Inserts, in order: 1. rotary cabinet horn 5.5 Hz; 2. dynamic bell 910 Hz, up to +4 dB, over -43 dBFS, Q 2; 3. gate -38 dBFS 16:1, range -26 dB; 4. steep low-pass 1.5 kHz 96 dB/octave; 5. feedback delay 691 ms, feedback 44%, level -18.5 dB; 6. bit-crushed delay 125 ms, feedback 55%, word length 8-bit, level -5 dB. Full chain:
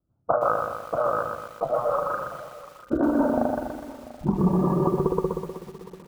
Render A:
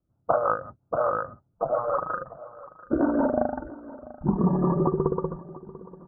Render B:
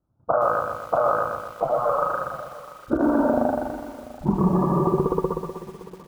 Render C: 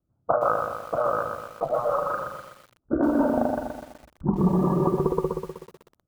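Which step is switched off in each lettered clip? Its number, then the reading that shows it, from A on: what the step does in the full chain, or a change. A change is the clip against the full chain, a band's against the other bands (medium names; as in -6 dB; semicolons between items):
6, momentary loudness spread change +3 LU; 1, 1 kHz band +1.5 dB; 5, momentary loudness spread change -3 LU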